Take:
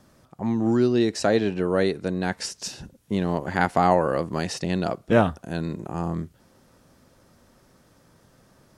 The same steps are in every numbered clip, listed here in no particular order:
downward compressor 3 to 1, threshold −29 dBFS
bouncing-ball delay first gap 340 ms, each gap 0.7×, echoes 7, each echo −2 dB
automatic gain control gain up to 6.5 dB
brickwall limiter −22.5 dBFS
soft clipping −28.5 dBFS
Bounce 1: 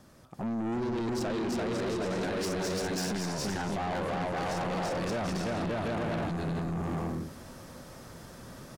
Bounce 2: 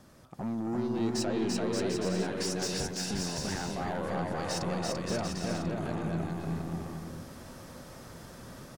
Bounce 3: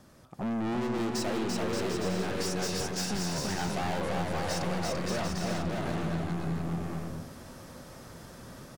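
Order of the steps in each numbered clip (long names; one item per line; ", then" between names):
bouncing-ball delay, then brickwall limiter, then automatic gain control, then soft clipping, then downward compressor
automatic gain control, then downward compressor, then brickwall limiter, then soft clipping, then bouncing-ball delay
automatic gain control, then soft clipping, then brickwall limiter, then bouncing-ball delay, then downward compressor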